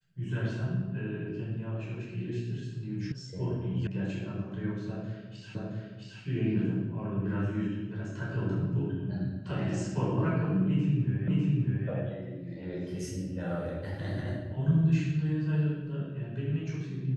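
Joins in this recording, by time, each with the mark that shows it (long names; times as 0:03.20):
0:03.12: cut off before it has died away
0:03.87: cut off before it has died away
0:05.55: the same again, the last 0.67 s
0:11.28: the same again, the last 0.6 s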